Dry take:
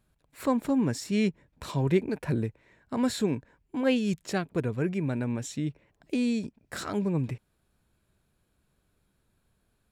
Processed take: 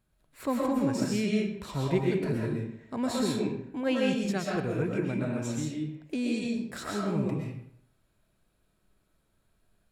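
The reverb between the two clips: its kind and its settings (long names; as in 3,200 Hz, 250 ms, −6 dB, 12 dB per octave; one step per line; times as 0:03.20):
comb and all-pass reverb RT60 0.67 s, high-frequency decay 0.8×, pre-delay 85 ms, DRR −3 dB
level −4 dB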